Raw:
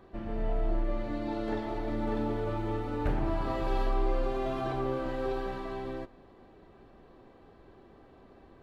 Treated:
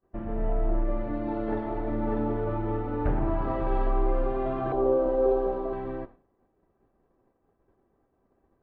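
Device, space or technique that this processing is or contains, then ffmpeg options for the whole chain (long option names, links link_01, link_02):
hearing-loss simulation: -filter_complex "[0:a]asettb=1/sr,asplit=3[link_01][link_02][link_03];[link_01]atrim=end=4.724[link_04];[link_02]atrim=start=4.72:end=5.73,asetpts=PTS-STARTPTS,afade=type=in:duration=0.004:curve=qsin,afade=type=out:start_time=1.006:duration=0.004:curve=qsin,equalizer=frequency=125:width_type=o:width=1:gain=-9,equalizer=frequency=500:width_type=o:width=1:gain=10,equalizer=frequency=2000:width_type=o:width=1:gain=-11[link_05];[link_03]atrim=start=5.726[link_06];[link_04][link_05]acrossfade=duration=0.004:curve1=hsin:curve2=qsin[link_07];[link_07][link_06]acrossfade=duration=0.004:curve1=qsin:curve2=hsin,lowpass=1600,agate=range=-33dB:threshold=-43dB:ratio=3:detection=peak,volume=3.5dB"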